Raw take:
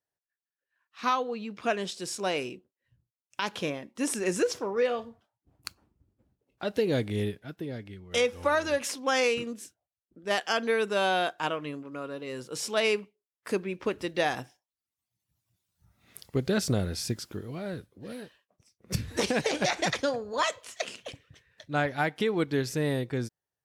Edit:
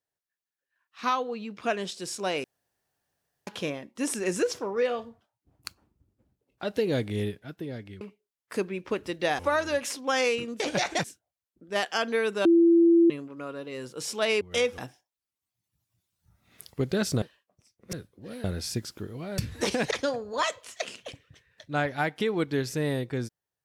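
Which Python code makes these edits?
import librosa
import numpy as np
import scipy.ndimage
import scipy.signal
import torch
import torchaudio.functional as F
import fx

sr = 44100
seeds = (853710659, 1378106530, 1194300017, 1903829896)

y = fx.edit(x, sr, fx.room_tone_fill(start_s=2.44, length_s=1.03),
    fx.swap(start_s=8.01, length_s=0.37, other_s=12.96, other_length_s=1.38),
    fx.bleep(start_s=11.0, length_s=0.65, hz=337.0, db=-15.0),
    fx.swap(start_s=16.78, length_s=0.94, other_s=18.23, other_length_s=0.71),
    fx.move(start_s=19.47, length_s=0.44, to_s=9.59), tone=tone)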